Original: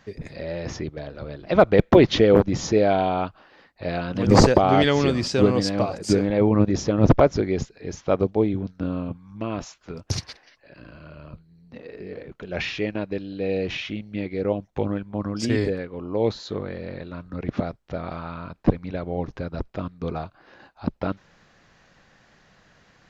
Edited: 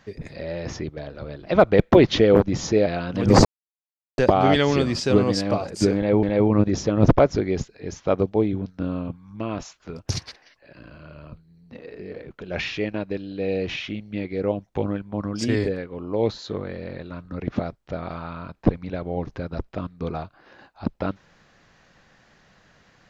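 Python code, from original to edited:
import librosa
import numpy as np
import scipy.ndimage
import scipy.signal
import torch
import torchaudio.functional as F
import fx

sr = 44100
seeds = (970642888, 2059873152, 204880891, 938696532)

y = fx.edit(x, sr, fx.cut(start_s=2.86, length_s=1.01),
    fx.insert_silence(at_s=4.46, length_s=0.73),
    fx.repeat(start_s=6.24, length_s=0.27, count=2), tone=tone)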